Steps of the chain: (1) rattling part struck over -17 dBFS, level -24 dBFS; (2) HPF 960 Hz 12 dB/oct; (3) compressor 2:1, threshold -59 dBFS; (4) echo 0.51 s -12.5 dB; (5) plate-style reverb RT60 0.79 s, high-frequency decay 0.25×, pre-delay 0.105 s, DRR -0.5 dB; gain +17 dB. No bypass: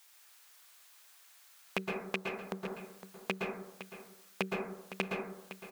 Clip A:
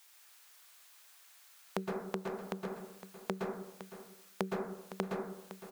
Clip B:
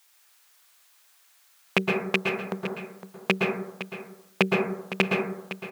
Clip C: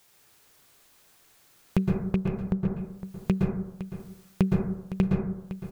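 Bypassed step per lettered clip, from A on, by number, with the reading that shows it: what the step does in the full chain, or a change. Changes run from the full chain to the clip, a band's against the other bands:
1, 2 kHz band -8.5 dB; 3, mean gain reduction 10.5 dB; 2, 125 Hz band +18.5 dB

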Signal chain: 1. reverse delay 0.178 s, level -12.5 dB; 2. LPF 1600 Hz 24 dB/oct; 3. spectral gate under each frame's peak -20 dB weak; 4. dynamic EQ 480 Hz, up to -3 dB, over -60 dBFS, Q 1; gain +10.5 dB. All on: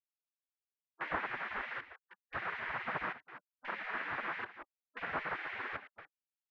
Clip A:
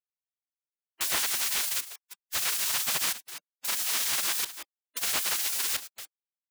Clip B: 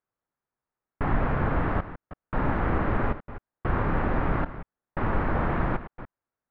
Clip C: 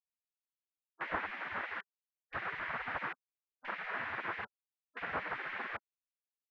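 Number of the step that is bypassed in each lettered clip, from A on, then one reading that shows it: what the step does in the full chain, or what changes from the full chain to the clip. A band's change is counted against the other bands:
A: 2, 4 kHz band +23.0 dB; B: 3, 125 Hz band +19.0 dB; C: 1, momentary loudness spread change -7 LU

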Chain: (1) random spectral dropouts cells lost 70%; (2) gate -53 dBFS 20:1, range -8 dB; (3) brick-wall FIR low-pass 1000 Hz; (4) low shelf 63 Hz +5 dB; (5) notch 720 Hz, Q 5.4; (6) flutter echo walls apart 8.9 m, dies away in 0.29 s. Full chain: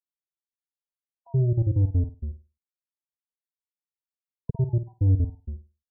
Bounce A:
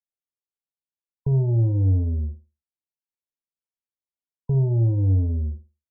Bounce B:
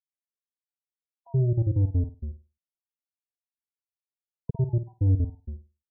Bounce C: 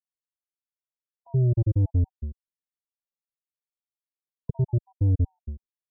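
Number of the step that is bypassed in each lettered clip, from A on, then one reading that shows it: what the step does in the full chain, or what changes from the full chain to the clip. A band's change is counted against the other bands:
1, crest factor change -4.0 dB; 4, loudness change -1.5 LU; 6, echo-to-direct -10.5 dB to none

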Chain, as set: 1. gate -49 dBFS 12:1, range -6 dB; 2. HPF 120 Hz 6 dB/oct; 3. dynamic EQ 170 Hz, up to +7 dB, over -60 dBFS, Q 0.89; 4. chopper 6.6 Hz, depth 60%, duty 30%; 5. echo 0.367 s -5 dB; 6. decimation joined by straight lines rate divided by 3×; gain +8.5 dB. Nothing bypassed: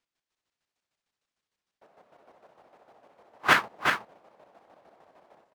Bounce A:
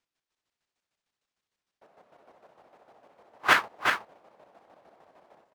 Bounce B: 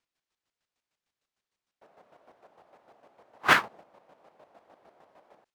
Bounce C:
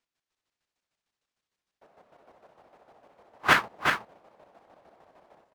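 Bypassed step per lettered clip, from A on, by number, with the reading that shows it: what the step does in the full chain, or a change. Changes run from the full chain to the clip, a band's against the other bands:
3, 125 Hz band -6.0 dB; 5, momentary loudness spread change -4 LU; 2, 125 Hz band +2.5 dB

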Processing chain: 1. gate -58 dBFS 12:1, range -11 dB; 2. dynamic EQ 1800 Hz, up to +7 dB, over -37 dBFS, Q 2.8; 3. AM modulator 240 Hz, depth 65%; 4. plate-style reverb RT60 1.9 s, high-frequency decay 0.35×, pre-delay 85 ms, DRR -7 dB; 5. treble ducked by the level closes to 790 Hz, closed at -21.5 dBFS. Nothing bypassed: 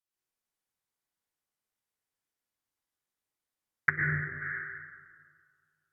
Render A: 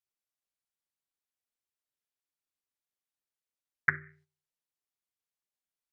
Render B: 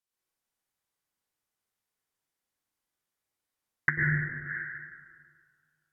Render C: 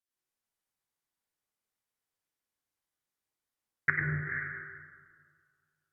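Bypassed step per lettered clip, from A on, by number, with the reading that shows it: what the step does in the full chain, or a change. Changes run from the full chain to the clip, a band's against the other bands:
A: 4, crest factor change +4.5 dB; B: 3, crest factor change -5.0 dB; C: 2, crest factor change -2.0 dB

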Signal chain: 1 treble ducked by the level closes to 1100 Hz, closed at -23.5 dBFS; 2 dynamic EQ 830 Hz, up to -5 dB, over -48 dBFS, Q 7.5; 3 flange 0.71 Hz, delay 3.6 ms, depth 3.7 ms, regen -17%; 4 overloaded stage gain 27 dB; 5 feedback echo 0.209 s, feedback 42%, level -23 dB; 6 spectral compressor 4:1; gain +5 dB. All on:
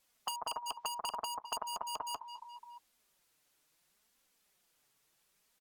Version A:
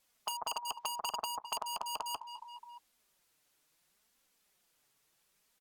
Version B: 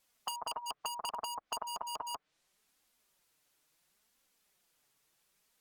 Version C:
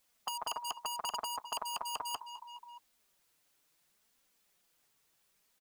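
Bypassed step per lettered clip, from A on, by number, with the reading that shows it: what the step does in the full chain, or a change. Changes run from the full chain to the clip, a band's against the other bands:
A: 2, 250 Hz band -2.5 dB; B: 5, momentary loudness spread change -10 LU; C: 1, 500 Hz band -2.5 dB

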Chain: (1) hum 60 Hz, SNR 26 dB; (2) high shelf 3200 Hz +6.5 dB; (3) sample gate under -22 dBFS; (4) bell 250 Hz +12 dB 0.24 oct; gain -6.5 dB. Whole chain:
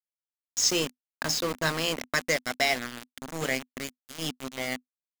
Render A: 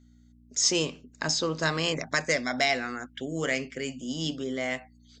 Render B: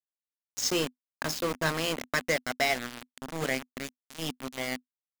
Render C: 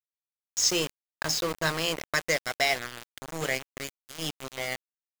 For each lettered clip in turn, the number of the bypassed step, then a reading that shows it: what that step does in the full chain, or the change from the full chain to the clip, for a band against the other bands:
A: 3, distortion -7 dB; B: 2, 8 kHz band -5.0 dB; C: 4, 250 Hz band -2.5 dB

